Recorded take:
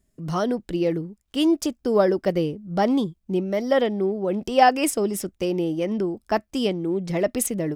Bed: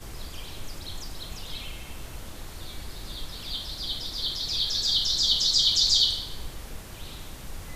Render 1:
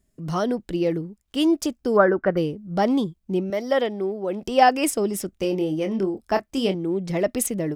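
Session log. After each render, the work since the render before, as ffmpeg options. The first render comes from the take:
-filter_complex "[0:a]asplit=3[s0][s1][s2];[s0]afade=t=out:st=1.96:d=0.02[s3];[s1]lowpass=f=1500:t=q:w=4.3,afade=t=in:st=1.96:d=0.02,afade=t=out:st=2.36:d=0.02[s4];[s2]afade=t=in:st=2.36:d=0.02[s5];[s3][s4][s5]amix=inputs=3:normalize=0,asettb=1/sr,asplit=3[s6][s7][s8];[s6]atrim=end=3.504[s9];[s7]atrim=start=3.5:end=4.43,asetpts=PTS-STARTPTS,afade=t=in:d=0.004:c=qsin,afade=t=out:st=0.926:d=0.004:c=qsin,highpass=f=320:p=1[s10];[s8]atrim=start=4.426[s11];[s9][s10]acrossfade=d=0.004:c1=hsin:c2=qsin[s12];[s12][s11]acrossfade=d=0.004:c1=qsin:c2=hsin,asettb=1/sr,asplit=3[s13][s14][s15];[s13]atrim=end=5.304[s16];[s14]atrim=start=5.3:end=6.75,asetpts=PTS-STARTPTS,afade=t=in:d=0.004:c=qsin,afade=t=out:st=1.446:d=0.004:c=qsin,asplit=2[s17][s18];[s18]adelay=26,volume=0.398[s19];[s17][s19]amix=inputs=2:normalize=0,atrim=end_sample=63945[s20];[s15]atrim=start=6.746[s21];[s16][s20]acrossfade=d=0.004:c1=hsin:c2=qsin[s22];[s22][s21]acrossfade=d=0.004:c1=qsin:c2=hsin"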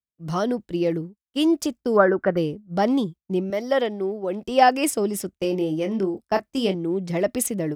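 -af "highpass=46,agate=range=0.0224:threshold=0.0355:ratio=3:detection=peak"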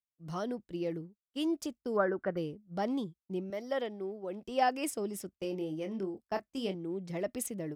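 -af "volume=0.237"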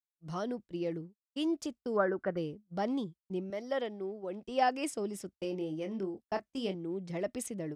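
-af "lowpass=9100,agate=range=0.0224:threshold=0.00562:ratio=3:detection=peak"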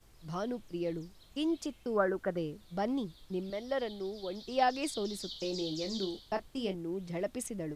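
-filter_complex "[1:a]volume=0.0841[s0];[0:a][s0]amix=inputs=2:normalize=0"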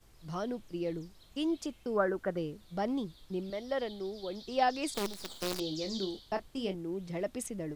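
-filter_complex "[0:a]asettb=1/sr,asplit=3[s0][s1][s2];[s0]atrim=end=4.944[s3];[s1]atrim=start=4.94:end=5.6,asetpts=PTS-STARTPTS,afade=t=in:d=0.004:c=qsin,afade=t=out:st=0.656:d=0.004:c=qsin,acrusher=bits=6:dc=4:mix=0:aa=0.000001[s4];[s2]atrim=start=5.596[s5];[s3][s4]acrossfade=d=0.004:c1=hsin:c2=qsin[s6];[s6][s5]acrossfade=d=0.004:c1=qsin:c2=hsin"

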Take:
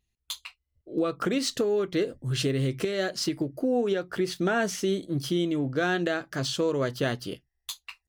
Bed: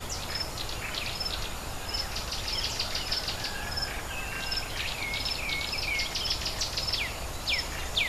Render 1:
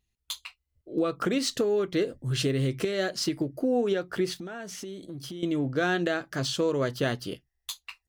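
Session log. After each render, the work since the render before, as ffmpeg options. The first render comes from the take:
-filter_complex "[0:a]asettb=1/sr,asplit=3[s0][s1][s2];[s0]atrim=end=4.394[s3];[s1]atrim=start=4.39:end=5.43,asetpts=PTS-STARTPTS,afade=t=in:d=0.004:c=qsin,afade=t=out:st=1.036:d=0.004:c=qsin,acompressor=threshold=0.0158:ratio=6:attack=3.2:release=140:knee=1:detection=peak[s4];[s2]atrim=start=5.426[s5];[s3][s4]acrossfade=d=0.004:c1=hsin:c2=qsin[s6];[s6][s5]acrossfade=d=0.004:c1=qsin:c2=hsin"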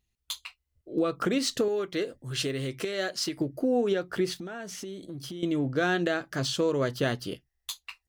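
-filter_complex "[0:a]asettb=1/sr,asplit=3[s0][s1][s2];[s0]atrim=end=1.684[s3];[s1]atrim=start=1.68:end=3.38,asetpts=PTS-STARTPTS,afade=t=in:d=0.004:c=qsin,afade=t=out:st=1.696:d=0.004:c=qsin,lowshelf=f=340:g=-9[s4];[s2]atrim=start=3.376[s5];[s3][s4]acrossfade=d=0.004:c1=hsin:c2=qsin[s6];[s6][s5]acrossfade=d=0.004:c1=qsin:c2=hsin"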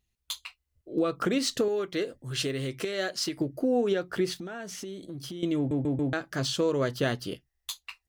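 -filter_complex "[0:a]asplit=5[s0][s1][s2][s3][s4];[s0]atrim=end=5.712[s5];[s1]atrim=start=5.568:end=5.712[s6];[s2]atrim=start=5.568:end=5.712[s7];[s3]atrim=start=5.568:end=5.712[s8];[s4]atrim=start=6.128[s9];[s5][s6]acrossfade=d=0.004:c1=hsin:c2=hsin[s10];[s10][s7]acrossfade=d=0.004:c1=hsin:c2=hsin[s11];[s11][s8]acrossfade=d=0.004:c1=hsin:c2=hsin[s12];[s12][s9]acrossfade=d=0.004:c1=hsin:c2=hsin"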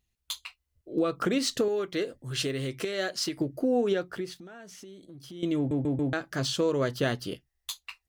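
-filter_complex "[0:a]asplit=3[s0][s1][s2];[s0]atrim=end=4.22,asetpts=PTS-STARTPTS,afade=t=out:st=4.02:d=0.2:silence=0.398107[s3];[s1]atrim=start=4.22:end=5.27,asetpts=PTS-STARTPTS,volume=0.398[s4];[s2]atrim=start=5.27,asetpts=PTS-STARTPTS,afade=t=in:d=0.2:silence=0.398107[s5];[s3][s4][s5]concat=n=3:v=0:a=1"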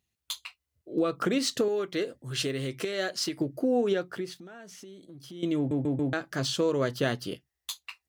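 -af "highpass=90"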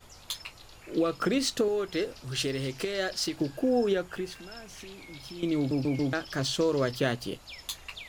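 -filter_complex "[1:a]volume=0.15[s0];[0:a][s0]amix=inputs=2:normalize=0"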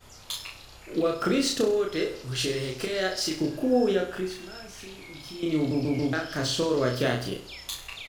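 -filter_complex "[0:a]asplit=2[s0][s1];[s1]adelay=32,volume=0.794[s2];[s0][s2]amix=inputs=2:normalize=0,aecho=1:1:65|130|195|260|325:0.299|0.143|0.0688|0.033|0.0158"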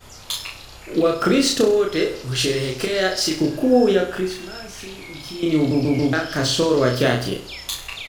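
-af "volume=2.37"

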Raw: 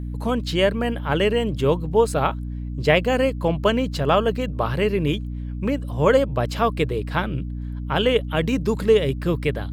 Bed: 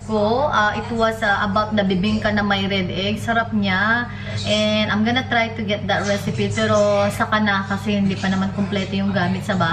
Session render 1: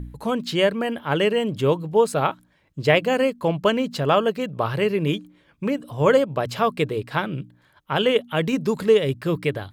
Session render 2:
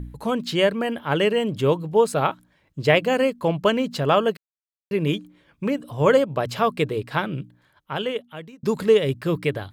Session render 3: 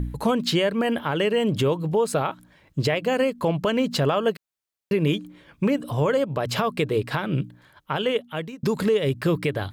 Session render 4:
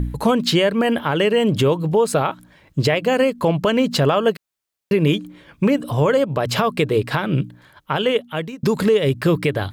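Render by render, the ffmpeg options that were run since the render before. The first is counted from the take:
-af "bandreject=f=60:t=h:w=4,bandreject=f=120:t=h:w=4,bandreject=f=180:t=h:w=4,bandreject=f=240:t=h:w=4,bandreject=f=300:t=h:w=4"
-filter_complex "[0:a]asplit=4[s0][s1][s2][s3];[s0]atrim=end=4.37,asetpts=PTS-STARTPTS,afade=t=out:st=4.366:d=0.004:c=hsin[s4];[s1]atrim=start=4.37:end=4.91,asetpts=PTS-STARTPTS,volume=0[s5];[s2]atrim=start=4.91:end=8.63,asetpts=PTS-STARTPTS,afade=t=in:d=0.004:c=hsin,afade=t=out:st=2.47:d=1.25[s6];[s3]atrim=start=8.63,asetpts=PTS-STARTPTS,afade=t=in:d=0.004:c=hsin[s7];[s4][s5][s6][s7]concat=n=4:v=0:a=1"
-filter_complex "[0:a]asplit=2[s0][s1];[s1]acompressor=threshold=0.0562:ratio=6,volume=1.19[s2];[s0][s2]amix=inputs=2:normalize=0,alimiter=limit=0.224:level=0:latency=1:release=177"
-af "volume=1.78"

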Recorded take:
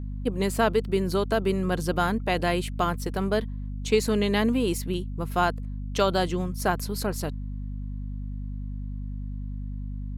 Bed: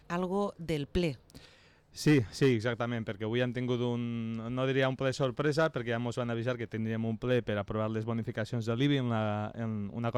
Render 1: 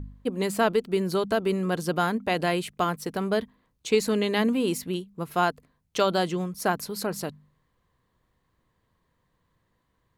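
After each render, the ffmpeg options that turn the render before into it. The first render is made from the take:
-af "bandreject=f=50:t=h:w=4,bandreject=f=100:t=h:w=4,bandreject=f=150:t=h:w=4,bandreject=f=200:t=h:w=4,bandreject=f=250:t=h:w=4"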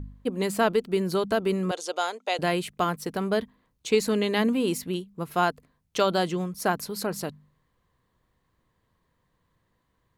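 -filter_complex "[0:a]asettb=1/sr,asplit=3[s0][s1][s2];[s0]atrim=end=1.714[s3];[s1]atrim=start=1.71:end=2.39,asetpts=PTS-STARTPTS,afade=t=in:d=0.004:c=qsin,afade=t=out:st=0.676:d=0.004:c=qsin,highpass=f=460:w=0.5412,highpass=f=460:w=1.3066,equalizer=f=1100:t=q:w=4:g=-5,equalizer=f=1700:t=q:w=4:g=-8,equalizer=f=3600:t=q:w=4:g=5,equalizer=f=6600:t=q:w=4:g=9,lowpass=f=9800:w=0.5412,lowpass=f=9800:w=1.3066[s4];[s2]atrim=start=2.386[s5];[s3][s4]acrossfade=d=0.004:c1=hsin:c2=qsin[s6];[s6][s5]acrossfade=d=0.004:c1=qsin:c2=hsin"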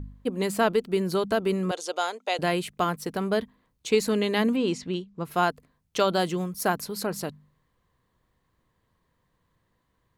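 -filter_complex "[0:a]asettb=1/sr,asplit=3[s0][s1][s2];[s0]atrim=end=4.564[s3];[s1]atrim=start=4.56:end=5.25,asetpts=PTS-STARTPTS,afade=t=in:d=0.004:c=qsin,afade=t=out:st=0.686:d=0.004:c=qsin,lowpass=f=6700:w=0.5412,lowpass=f=6700:w=1.3066[s4];[s2]atrim=start=5.246[s5];[s3][s4]acrossfade=d=0.004:c1=hsin:c2=qsin[s6];[s6][s5]acrossfade=d=0.004:c1=qsin:c2=hsin,asettb=1/sr,asplit=3[s7][s8][s9];[s7]atrim=end=6.194[s10];[s8]atrim=start=6.19:end=6.76,asetpts=PTS-STARTPTS,afade=t=in:d=0.004:c=qsin,afade=t=out:st=0.566:d=0.004:c=qsin,highshelf=f=12000:g=10[s11];[s9]atrim=start=6.756[s12];[s10][s11]acrossfade=d=0.004:c1=hsin:c2=qsin[s13];[s13][s12]acrossfade=d=0.004:c1=qsin:c2=hsin"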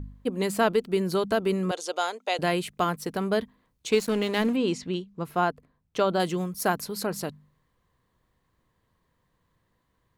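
-filter_complex "[0:a]asettb=1/sr,asplit=3[s0][s1][s2];[s0]atrim=end=3.924[s3];[s1]atrim=start=3.92:end=4.53,asetpts=PTS-STARTPTS,afade=t=in:d=0.004:c=qsin,afade=t=out:st=0.606:d=0.004:c=qsin,aeval=exprs='sgn(val(0))*max(abs(val(0))-0.0126,0)':c=same[s4];[s2]atrim=start=4.526[s5];[s3][s4]acrossfade=d=0.004:c1=hsin:c2=qsin[s6];[s6][s5]acrossfade=d=0.004:c1=qsin:c2=hsin,asettb=1/sr,asplit=3[s7][s8][s9];[s7]atrim=end=5.314[s10];[s8]atrim=start=5.31:end=6.2,asetpts=PTS-STARTPTS,afade=t=in:d=0.004:c=qsin,afade=t=out:st=0.886:d=0.004:c=qsin,highshelf=f=2800:g=-10.5[s11];[s9]atrim=start=6.196[s12];[s10][s11]acrossfade=d=0.004:c1=hsin:c2=qsin[s13];[s13][s12]acrossfade=d=0.004:c1=qsin:c2=hsin"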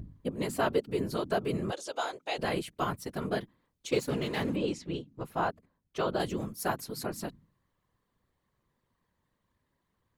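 -af "afftfilt=real='hypot(re,im)*cos(2*PI*random(0))':imag='hypot(re,im)*sin(2*PI*random(1))':win_size=512:overlap=0.75"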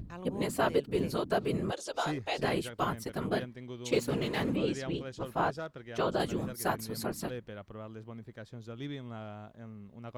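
-filter_complex "[1:a]volume=0.251[s0];[0:a][s0]amix=inputs=2:normalize=0"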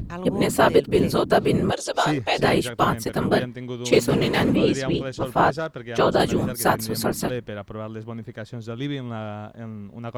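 -af "volume=3.76"

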